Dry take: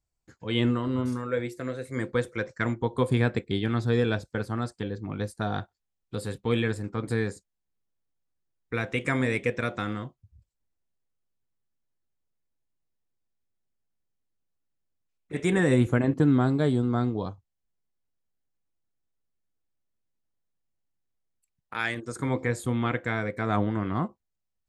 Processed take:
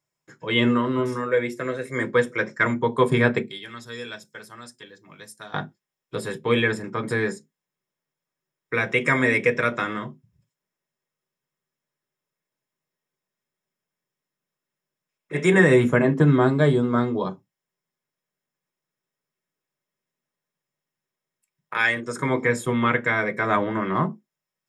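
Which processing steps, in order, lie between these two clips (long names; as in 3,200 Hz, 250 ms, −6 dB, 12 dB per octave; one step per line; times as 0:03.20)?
0:03.42–0:05.54: first-order pre-emphasis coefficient 0.9
convolution reverb RT60 0.15 s, pre-delay 3 ms, DRR 4.5 dB
level +3.5 dB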